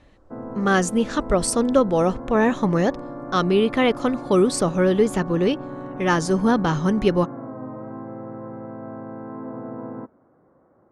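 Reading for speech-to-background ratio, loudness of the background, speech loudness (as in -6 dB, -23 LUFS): 14.0 dB, -35.0 LUFS, -21.0 LUFS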